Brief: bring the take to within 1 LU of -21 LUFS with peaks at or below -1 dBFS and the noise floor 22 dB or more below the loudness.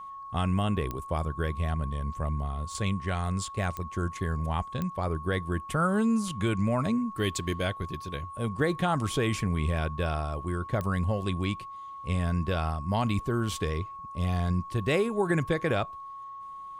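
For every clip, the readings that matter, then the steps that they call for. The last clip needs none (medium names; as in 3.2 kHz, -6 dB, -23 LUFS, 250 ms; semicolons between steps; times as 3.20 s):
clicks found 4; steady tone 1.1 kHz; tone level -39 dBFS; loudness -30.0 LUFS; peak level -14.5 dBFS; loudness target -21.0 LUFS
-> de-click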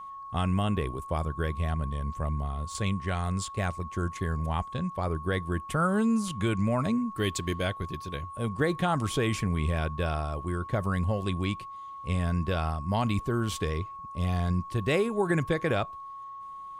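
clicks found 0; steady tone 1.1 kHz; tone level -39 dBFS
-> band-stop 1.1 kHz, Q 30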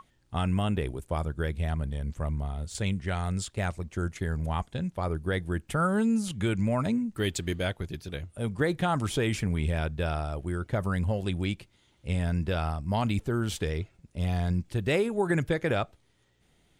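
steady tone not found; loudness -30.0 LUFS; peak level -14.5 dBFS; loudness target -21.0 LUFS
-> trim +9 dB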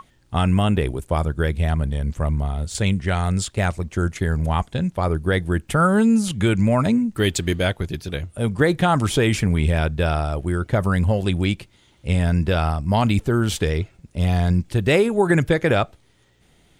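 loudness -21.0 LUFS; peak level -5.5 dBFS; noise floor -58 dBFS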